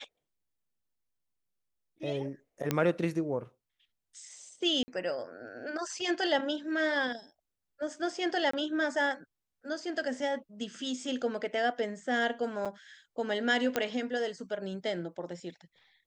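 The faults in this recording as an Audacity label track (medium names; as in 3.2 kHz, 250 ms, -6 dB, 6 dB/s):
2.710000	2.710000	pop -13 dBFS
4.830000	4.880000	dropout 50 ms
8.510000	8.530000	dropout 24 ms
12.650000	12.660000	dropout 6.6 ms
13.760000	13.760000	pop -13 dBFS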